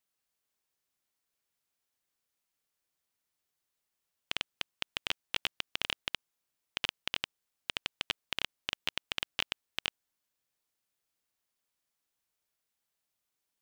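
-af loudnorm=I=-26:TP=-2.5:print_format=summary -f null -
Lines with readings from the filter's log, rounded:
Input Integrated:    -36.8 LUFS
Input True Peak:     -11.3 dBTP
Input LRA:             4.6 LU
Input Threshold:     -46.8 LUFS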